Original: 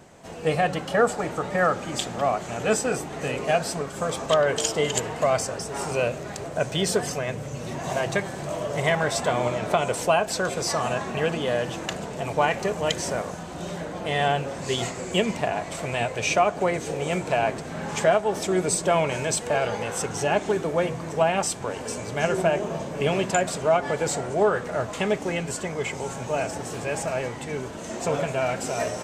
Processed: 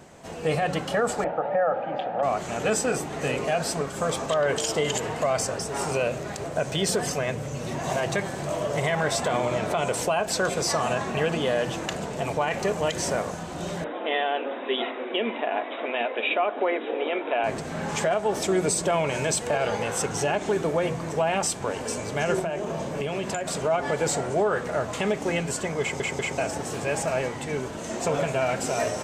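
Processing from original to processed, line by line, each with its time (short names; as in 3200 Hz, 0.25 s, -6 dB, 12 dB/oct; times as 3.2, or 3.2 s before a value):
1.24–2.23 speaker cabinet 220–2300 Hz, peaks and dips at 240 Hz -6 dB, 380 Hz -10 dB, 540 Hz +8 dB, 770 Hz +10 dB, 1100 Hz -8 dB, 2100 Hz -8 dB
13.84–17.44 brick-wall FIR band-pass 220–3900 Hz
22.39–23.55 compressor 10:1, threshold -26 dBFS
25.81 stutter in place 0.19 s, 3 plays
whole clip: notches 60/120/180 Hz; limiter -16.5 dBFS; gain +1.5 dB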